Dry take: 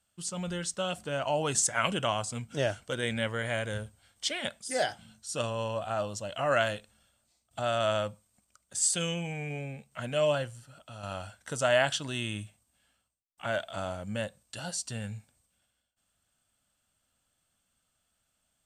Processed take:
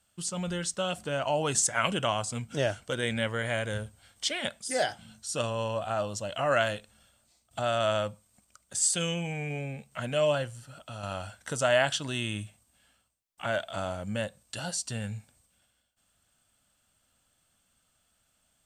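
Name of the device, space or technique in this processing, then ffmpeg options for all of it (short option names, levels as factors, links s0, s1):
parallel compression: -filter_complex "[0:a]asplit=2[s0][s1];[s1]acompressor=threshold=0.00708:ratio=6,volume=0.841[s2];[s0][s2]amix=inputs=2:normalize=0"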